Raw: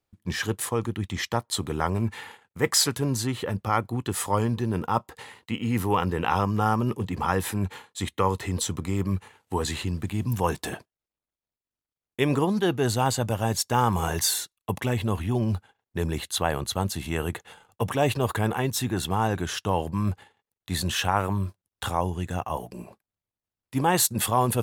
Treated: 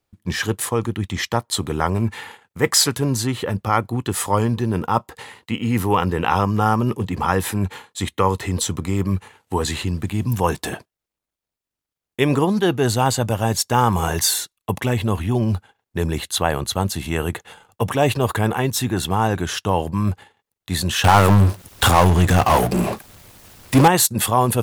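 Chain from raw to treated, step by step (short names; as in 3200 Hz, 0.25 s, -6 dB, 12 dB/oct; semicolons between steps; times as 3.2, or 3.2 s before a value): 21.04–23.88 power-law curve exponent 0.5; gain +5.5 dB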